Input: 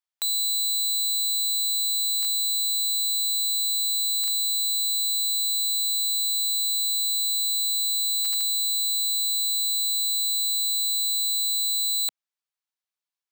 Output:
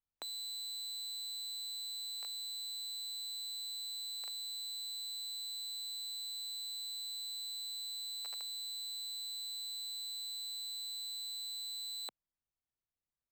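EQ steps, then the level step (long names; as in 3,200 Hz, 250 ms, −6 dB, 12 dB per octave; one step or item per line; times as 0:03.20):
spectral tilt −5 dB per octave
−5.5 dB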